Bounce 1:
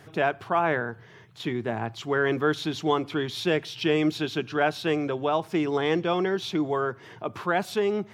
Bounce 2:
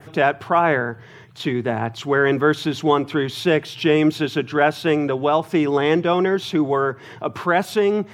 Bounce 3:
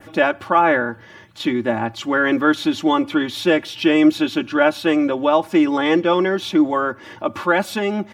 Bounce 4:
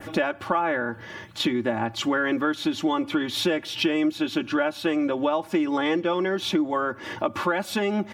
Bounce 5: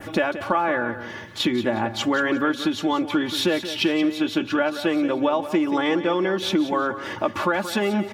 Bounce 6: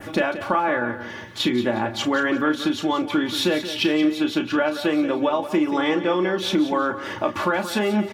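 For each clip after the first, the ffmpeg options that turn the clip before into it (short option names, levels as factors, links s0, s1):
-af "adynamicequalizer=threshold=0.00355:dfrequency=4800:dqfactor=1.1:tfrequency=4800:tqfactor=1.1:attack=5:release=100:ratio=0.375:range=2.5:mode=cutabove:tftype=bell,volume=2.24"
-af "aecho=1:1:3.5:0.78"
-af "acompressor=threshold=0.0501:ratio=5,volume=1.58"
-af "aecho=1:1:179|358|537:0.251|0.0779|0.0241,volume=1.26"
-filter_complex "[0:a]asplit=2[s0][s1];[s1]adelay=33,volume=0.355[s2];[s0][s2]amix=inputs=2:normalize=0"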